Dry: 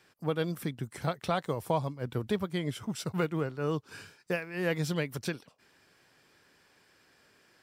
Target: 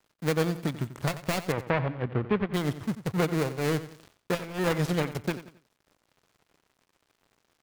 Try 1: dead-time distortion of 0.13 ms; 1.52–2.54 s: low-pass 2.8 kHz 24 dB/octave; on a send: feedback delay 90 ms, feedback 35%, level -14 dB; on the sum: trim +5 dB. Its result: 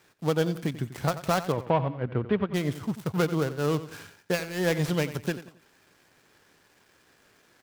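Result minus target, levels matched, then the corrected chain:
dead-time distortion: distortion -8 dB
dead-time distortion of 0.4 ms; 1.52–2.54 s: low-pass 2.8 kHz 24 dB/octave; on a send: feedback delay 90 ms, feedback 35%, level -14 dB; on the sum: trim +5 dB

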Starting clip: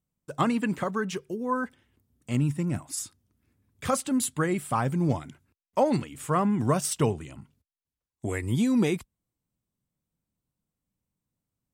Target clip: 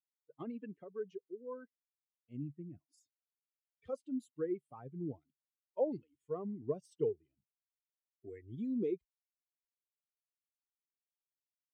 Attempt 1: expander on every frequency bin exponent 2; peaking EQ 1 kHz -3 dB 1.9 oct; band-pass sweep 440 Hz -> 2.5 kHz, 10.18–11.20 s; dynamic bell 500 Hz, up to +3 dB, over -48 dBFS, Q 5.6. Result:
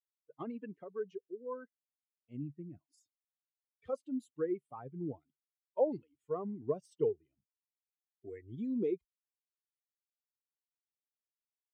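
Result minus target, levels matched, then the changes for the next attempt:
1 kHz band +3.0 dB
change: peaking EQ 1 kHz -9 dB 1.9 oct

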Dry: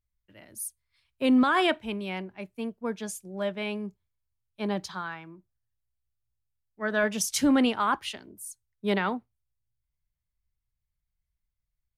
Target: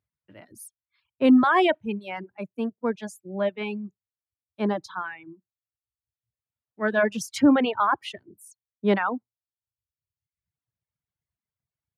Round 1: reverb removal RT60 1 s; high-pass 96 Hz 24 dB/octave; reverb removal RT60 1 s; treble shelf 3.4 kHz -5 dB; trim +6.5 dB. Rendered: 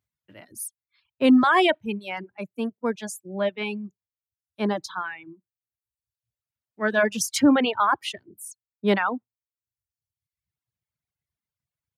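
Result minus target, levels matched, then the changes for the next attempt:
8 kHz band +8.5 dB
change: treble shelf 3.4 kHz -16 dB

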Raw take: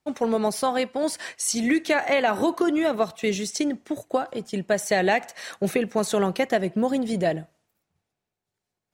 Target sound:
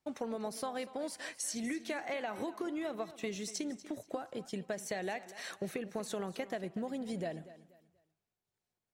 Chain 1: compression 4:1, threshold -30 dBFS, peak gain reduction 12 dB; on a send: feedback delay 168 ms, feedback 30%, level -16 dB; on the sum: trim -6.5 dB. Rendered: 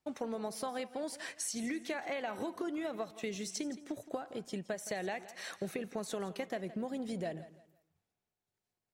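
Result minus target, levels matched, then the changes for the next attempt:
echo 73 ms early
change: feedback delay 241 ms, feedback 30%, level -16 dB

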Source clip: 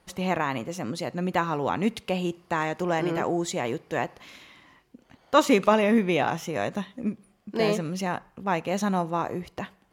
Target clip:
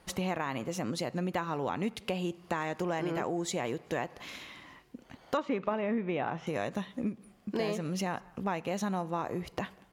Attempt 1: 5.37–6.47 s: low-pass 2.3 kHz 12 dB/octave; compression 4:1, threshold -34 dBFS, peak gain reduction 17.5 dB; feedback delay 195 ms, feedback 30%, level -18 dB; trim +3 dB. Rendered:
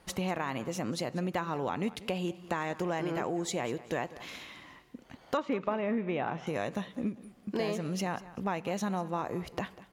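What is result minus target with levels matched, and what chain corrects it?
echo-to-direct +10 dB
5.37–6.47 s: low-pass 2.3 kHz 12 dB/octave; compression 4:1, threshold -34 dBFS, peak gain reduction 17.5 dB; feedback delay 195 ms, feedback 30%, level -28 dB; trim +3 dB

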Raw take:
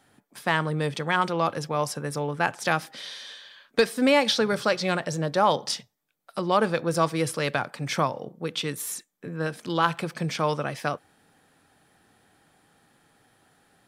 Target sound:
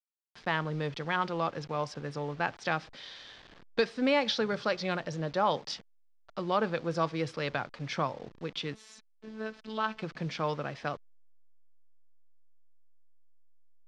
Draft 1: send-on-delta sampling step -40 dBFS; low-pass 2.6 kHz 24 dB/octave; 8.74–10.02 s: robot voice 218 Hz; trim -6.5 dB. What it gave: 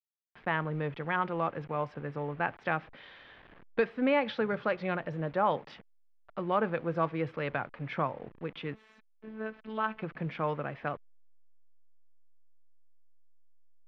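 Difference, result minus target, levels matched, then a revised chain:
4 kHz band -9.5 dB
send-on-delta sampling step -40 dBFS; low-pass 5.4 kHz 24 dB/octave; 8.74–10.02 s: robot voice 218 Hz; trim -6.5 dB

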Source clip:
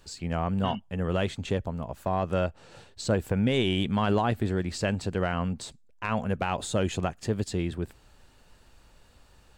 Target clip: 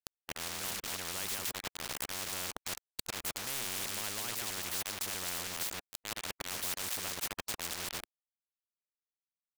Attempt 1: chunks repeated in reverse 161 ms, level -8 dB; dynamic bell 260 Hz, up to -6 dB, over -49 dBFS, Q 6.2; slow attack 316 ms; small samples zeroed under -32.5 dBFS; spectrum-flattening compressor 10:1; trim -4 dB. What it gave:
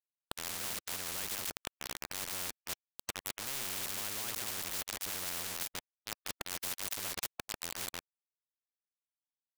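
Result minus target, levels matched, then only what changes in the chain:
small samples zeroed: distortion +6 dB
change: small samples zeroed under -38.5 dBFS

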